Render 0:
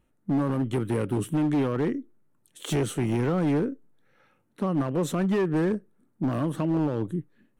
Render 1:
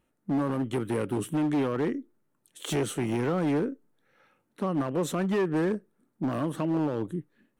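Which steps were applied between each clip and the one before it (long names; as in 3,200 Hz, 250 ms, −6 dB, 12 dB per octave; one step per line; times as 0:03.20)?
low-shelf EQ 140 Hz −10 dB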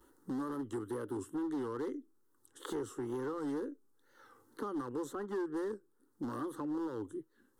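tape wow and flutter 140 cents
phaser with its sweep stopped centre 650 Hz, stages 6
multiband upward and downward compressor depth 70%
level −8 dB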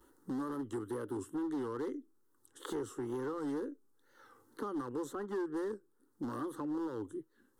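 no processing that can be heard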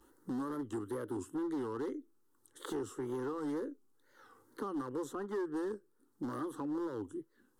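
tape wow and flutter 71 cents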